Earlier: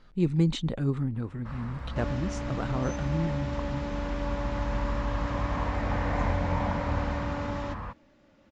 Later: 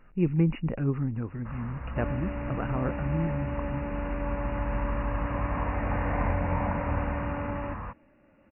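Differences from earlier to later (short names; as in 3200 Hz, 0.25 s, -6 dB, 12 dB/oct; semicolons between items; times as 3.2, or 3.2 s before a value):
speech: remove air absorption 130 m; master: add brick-wall FIR low-pass 2900 Hz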